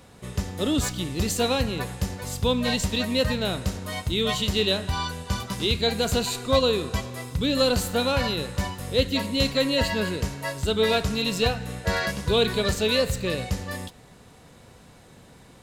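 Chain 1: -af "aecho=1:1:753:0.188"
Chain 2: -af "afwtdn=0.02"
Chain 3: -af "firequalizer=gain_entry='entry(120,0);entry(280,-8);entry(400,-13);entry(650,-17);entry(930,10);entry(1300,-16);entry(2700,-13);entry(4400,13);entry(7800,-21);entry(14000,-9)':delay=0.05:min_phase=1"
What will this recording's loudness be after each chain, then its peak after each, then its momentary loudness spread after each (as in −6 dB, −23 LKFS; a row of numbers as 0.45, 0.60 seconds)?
−25.0, −25.5, −24.0 LKFS; −8.0, −8.5, −8.5 dBFS; 8, 10, 11 LU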